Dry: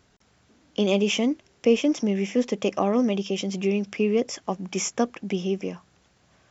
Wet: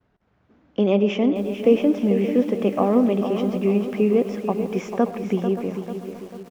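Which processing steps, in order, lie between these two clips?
Bessel low-pass 1.5 kHz, order 2; expander -58 dBFS; feedback delay 443 ms, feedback 47%, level -9.5 dB; reverberation, pre-delay 55 ms, DRR 14.5 dB; bit-crushed delay 576 ms, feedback 35%, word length 7-bit, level -13.5 dB; trim +3.5 dB

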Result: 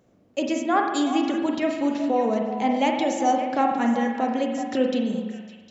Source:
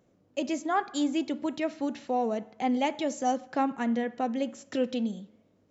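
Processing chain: repeats whose band climbs or falls 189 ms, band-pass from 300 Hz, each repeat 1.4 oct, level -5 dB; spring tank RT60 1.2 s, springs 42 ms, chirp 75 ms, DRR 2.5 dB; trim +4.5 dB

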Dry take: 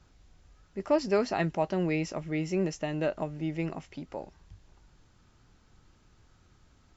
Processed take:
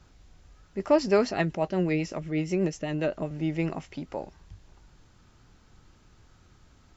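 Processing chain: 1.31–3.31 s: rotary cabinet horn 8 Hz; trim +4 dB

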